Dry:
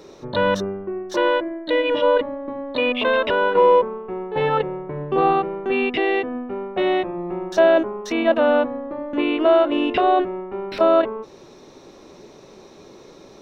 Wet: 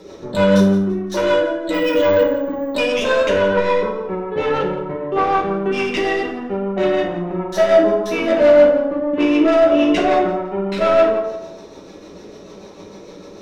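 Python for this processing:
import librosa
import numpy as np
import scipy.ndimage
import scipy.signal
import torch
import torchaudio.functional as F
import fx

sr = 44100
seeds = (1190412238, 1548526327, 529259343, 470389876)

y = fx.tracing_dist(x, sr, depth_ms=0.056)
y = fx.low_shelf(y, sr, hz=240.0, db=-9.5, at=(4.92, 5.35))
y = 10.0 ** (-17.0 / 20.0) * np.tanh(y / 10.0 ** (-17.0 / 20.0))
y = fx.rotary(y, sr, hz=6.7)
y = fx.echo_feedback(y, sr, ms=170, feedback_pct=30, wet_db=-16.0)
y = fx.rev_fdn(y, sr, rt60_s=0.85, lf_ratio=0.8, hf_ratio=0.55, size_ms=31.0, drr_db=-3.0)
y = fx.resample_bad(y, sr, factor=2, down='none', up='hold', at=(1.74, 2.75))
y = F.gain(torch.from_numpy(y), 3.5).numpy()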